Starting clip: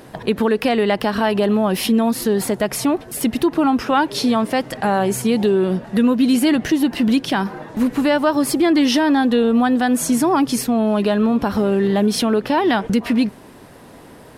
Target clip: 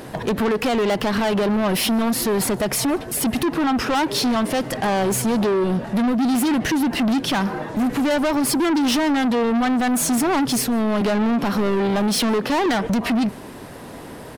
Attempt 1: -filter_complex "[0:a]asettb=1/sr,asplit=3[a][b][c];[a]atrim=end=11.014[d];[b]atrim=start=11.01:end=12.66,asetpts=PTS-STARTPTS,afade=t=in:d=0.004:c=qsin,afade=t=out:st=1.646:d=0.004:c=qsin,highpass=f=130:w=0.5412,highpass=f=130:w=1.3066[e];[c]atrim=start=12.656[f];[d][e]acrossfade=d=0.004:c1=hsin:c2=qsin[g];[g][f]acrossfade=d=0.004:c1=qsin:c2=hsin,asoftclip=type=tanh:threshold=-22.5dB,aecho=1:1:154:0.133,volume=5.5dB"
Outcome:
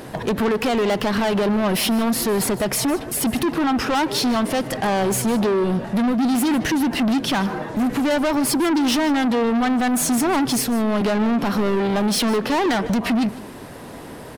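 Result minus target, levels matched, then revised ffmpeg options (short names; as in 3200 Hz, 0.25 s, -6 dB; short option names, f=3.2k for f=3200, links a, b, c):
echo-to-direct +11 dB
-filter_complex "[0:a]asettb=1/sr,asplit=3[a][b][c];[a]atrim=end=11.014[d];[b]atrim=start=11.01:end=12.66,asetpts=PTS-STARTPTS,afade=t=in:d=0.004:c=qsin,afade=t=out:st=1.646:d=0.004:c=qsin,highpass=f=130:w=0.5412,highpass=f=130:w=1.3066[e];[c]atrim=start=12.656[f];[d][e]acrossfade=d=0.004:c1=hsin:c2=qsin[g];[g][f]acrossfade=d=0.004:c1=qsin:c2=hsin,asoftclip=type=tanh:threshold=-22.5dB,aecho=1:1:154:0.0376,volume=5.5dB"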